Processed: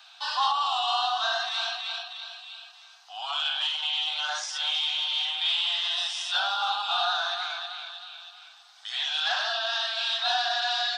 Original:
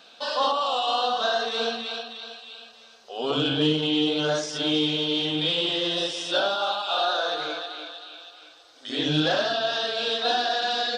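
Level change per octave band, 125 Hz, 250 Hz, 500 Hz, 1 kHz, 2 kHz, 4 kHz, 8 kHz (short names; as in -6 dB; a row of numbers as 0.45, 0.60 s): under -40 dB, under -40 dB, -13.0 dB, -1.5 dB, 0.0 dB, 0.0 dB, 0.0 dB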